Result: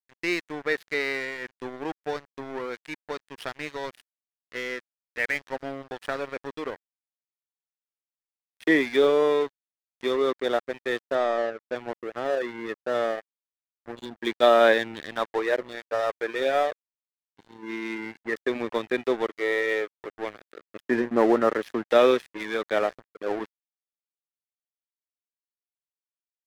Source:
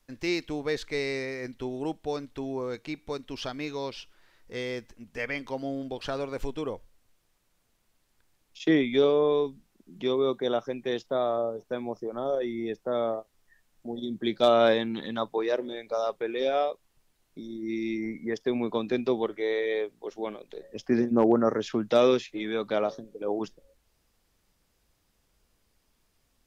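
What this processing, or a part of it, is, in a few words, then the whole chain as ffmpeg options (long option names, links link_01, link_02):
pocket radio on a weak battery: -filter_complex "[0:a]highpass=300,lowpass=3900,aeval=exprs='sgn(val(0))*max(abs(val(0))-0.0106,0)':channel_layout=same,equalizer=frequency=1800:width_type=o:width=0.55:gain=8,asettb=1/sr,asplit=3[link_01][link_02][link_03];[link_01]atrim=end=11.154[link_04];[link_02]atrim=start=11.15:end=11.76,asetpts=PTS-STARTPTS,afade=type=in:duration=0.004:curve=qsin,afade=type=out:start_time=0.606:duration=0.004:curve=qsin,lowpass=6000[link_05];[link_03]atrim=start=11.756[link_06];[link_04][link_05]acrossfade=duration=0.004:curve1=hsin:curve2=qsin[link_07];[link_07][link_06]acrossfade=duration=0.004:curve1=qsin:curve2=hsin,volume=4dB"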